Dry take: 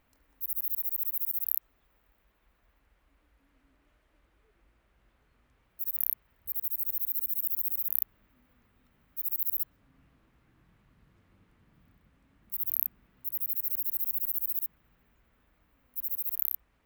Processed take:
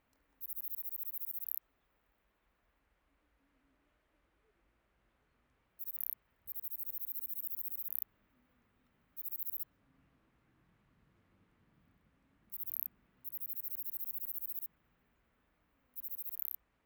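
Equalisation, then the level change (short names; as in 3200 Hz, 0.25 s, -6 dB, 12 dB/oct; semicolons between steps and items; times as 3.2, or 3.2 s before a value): low shelf 79 Hz -8 dB; high shelf 4700 Hz -5 dB; -5.0 dB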